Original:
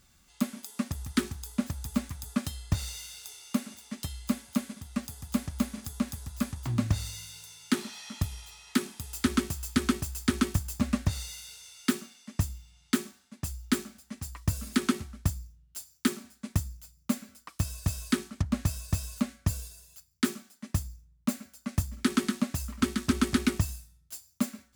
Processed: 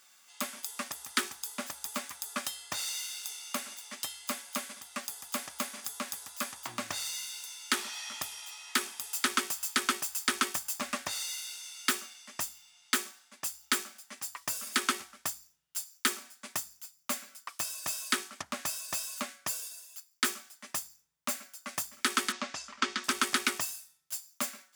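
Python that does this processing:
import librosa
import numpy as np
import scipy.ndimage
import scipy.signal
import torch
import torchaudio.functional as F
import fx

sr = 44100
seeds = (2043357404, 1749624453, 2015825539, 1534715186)

y = fx.lowpass(x, sr, hz=6200.0, slope=24, at=(22.32, 23.04))
y = scipy.signal.sosfilt(scipy.signal.butter(2, 730.0, 'highpass', fs=sr, output='sos'), y)
y = fx.notch(y, sr, hz=4100.0, q=20.0)
y = y * 10.0 ** (5.0 / 20.0)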